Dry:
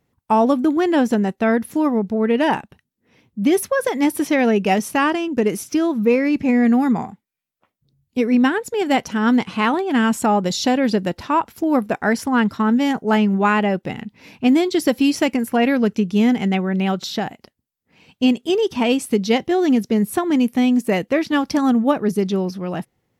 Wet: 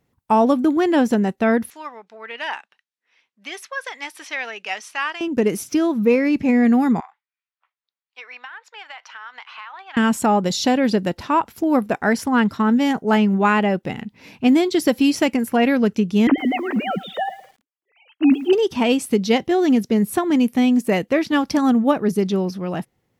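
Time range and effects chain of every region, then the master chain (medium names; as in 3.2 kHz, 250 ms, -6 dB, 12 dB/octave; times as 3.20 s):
1.70–5.21 s: high-pass 1.4 kHz + distance through air 86 m
7.00–9.97 s: high-pass 1 kHz 24 dB/octave + distance through air 220 m + compression 10:1, threshold -32 dBFS
16.27–18.53 s: formants replaced by sine waves + bit-crushed delay 109 ms, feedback 35%, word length 7-bit, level -15 dB
whole clip: none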